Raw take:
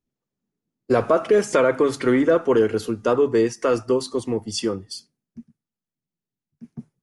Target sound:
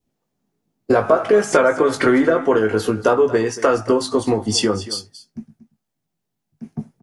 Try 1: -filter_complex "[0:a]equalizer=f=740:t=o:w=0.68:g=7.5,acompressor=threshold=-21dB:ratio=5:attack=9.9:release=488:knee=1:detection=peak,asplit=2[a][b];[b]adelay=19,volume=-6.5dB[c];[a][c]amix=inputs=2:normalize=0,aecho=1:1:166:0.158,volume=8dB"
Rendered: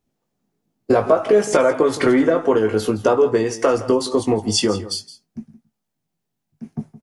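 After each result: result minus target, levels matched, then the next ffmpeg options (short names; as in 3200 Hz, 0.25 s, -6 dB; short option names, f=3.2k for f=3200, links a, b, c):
echo 66 ms early; 2000 Hz band -4.0 dB
-filter_complex "[0:a]equalizer=f=740:t=o:w=0.68:g=7.5,acompressor=threshold=-21dB:ratio=5:attack=9.9:release=488:knee=1:detection=peak,asplit=2[a][b];[b]adelay=19,volume=-6.5dB[c];[a][c]amix=inputs=2:normalize=0,aecho=1:1:232:0.158,volume=8dB"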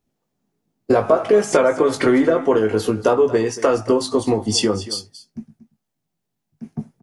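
2000 Hz band -4.0 dB
-filter_complex "[0:a]equalizer=f=740:t=o:w=0.68:g=7.5,acompressor=threshold=-21dB:ratio=5:attack=9.9:release=488:knee=1:detection=peak,adynamicequalizer=threshold=0.00562:dfrequency=1500:dqfactor=2.4:tfrequency=1500:tqfactor=2.4:attack=5:release=100:ratio=0.417:range=3:mode=boostabove:tftype=bell,asplit=2[a][b];[b]adelay=19,volume=-6.5dB[c];[a][c]amix=inputs=2:normalize=0,aecho=1:1:232:0.158,volume=8dB"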